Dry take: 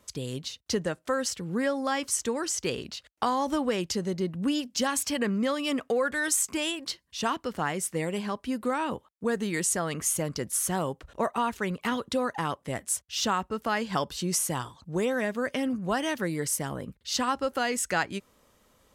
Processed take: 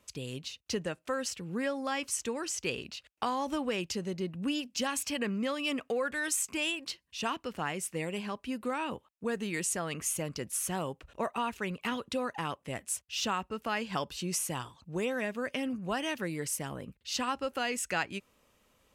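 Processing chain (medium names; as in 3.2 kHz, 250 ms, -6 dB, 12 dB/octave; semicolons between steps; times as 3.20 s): peaking EQ 2.6 kHz +8.5 dB 0.36 oct; trim -5.5 dB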